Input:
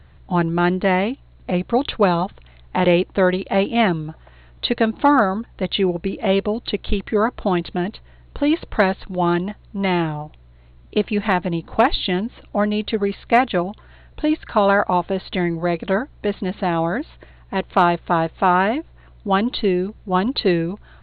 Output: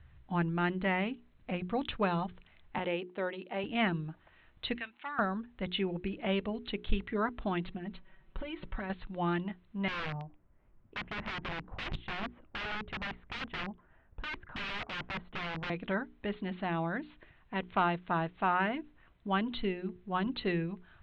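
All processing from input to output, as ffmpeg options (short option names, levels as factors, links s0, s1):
-filter_complex "[0:a]asettb=1/sr,asplit=3[s0][s1][s2];[s0]atrim=end=2.784[s3];[s1]atrim=start=2.78:end=3.64,asetpts=PTS-STARTPTS,afade=t=in:d=0.004:c=qsin,afade=t=out:st=0.856:d=0.004:c=qsin,highpass=330,lowpass=3700,equalizer=f=1600:w=0.62:g=-6[s4];[s2]atrim=start=3.636[s5];[s3][s4]acrossfade=d=0.004:c1=hsin:c2=qsin[s6];[s6][s5]acrossfade=d=0.004:c1=qsin:c2=hsin,asettb=1/sr,asplit=3[s7][s8][s9];[s7]atrim=end=4.754[s10];[s8]atrim=start=4.75:end=5.19,asetpts=PTS-STARTPTS,afade=t=in:d=0.004:c=qsin,afade=t=out:st=0.436:d=0.004:c=qsin,bandpass=f=2400:t=q:w=1.8,acompressor=mode=upward:threshold=0.00562:ratio=2.5:attack=3.2:release=140:knee=2.83:detection=peak[s11];[s9]atrim=start=5.186[s12];[s10][s11]acrossfade=d=0.004:c1=hsin:c2=qsin[s13];[s13][s12]acrossfade=d=0.004:c1=qsin:c2=hsin,asettb=1/sr,asplit=3[s14][s15][s16];[s14]atrim=end=7.644[s17];[s15]atrim=start=7.64:end=8.9,asetpts=PTS-STARTPTS,afade=t=in:d=0.004:c=qsin,afade=t=out:st=1.256:d=0.004:c=qsin,lowpass=f=2700:p=1,aecho=1:1:5.3:0.91,atrim=end_sample=55566,acompressor=threshold=0.0794:ratio=12:attack=3.2:release=140:knee=1:detection=peak[s18];[s16]atrim=start=8.896[s19];[s17][s18]acrossfade=d=0.004:c1=hsin:c2=qsin[s20];[s20][s19]acrossfade=d=0.004:c1=qsin:c2=hsin,asettb=1/sr,asplit=3[s21][s22][s23];[s21]atrim=end=9.884[s24];[s22]atrim=start=9.88:end=15.7,asetpts=PTS-STARTPTS,afade=t=in:d=0.004:c=qsin,afade=t=out:st=5.816:d=0.004:c=qsin,lowpass=1200,aeval=exprs='(mod(10*val(0)+1,2)-1)/10':c=same[s25];[s23]atrim=start=15.696[s26];[s24][s25]acrossfade=d=0.004:c1=hsin:c2=qsin[s27];[s27][s26]acrossfade=d=0.004:c1=qsin:c2=hsin,lowpass=f=3100:w=0.5412,lowpass=f=3100:w=1.3066,equalizer=f=520:w=0.52:g=-8.5,bandreject=f=60:t=h:w=6,bandreject=f=120:t=h:w=6,bandreject=f=180:t=h:w=6,bandreject=f=240:t=h:w=6,bandreject=f=300:t=h:w=6,bandreject=f=360:t=h:w=6,bandreject=f=420:t=h:w=6,volume=0.422"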